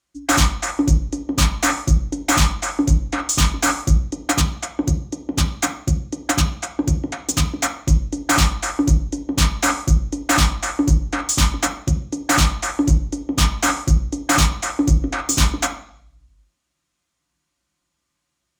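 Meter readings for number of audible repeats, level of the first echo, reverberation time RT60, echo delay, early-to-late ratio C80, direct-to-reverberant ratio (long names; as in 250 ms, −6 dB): no echo audible, no echo audible, 0.60 s, no echo audible, 12.5 dB, 1.5 dB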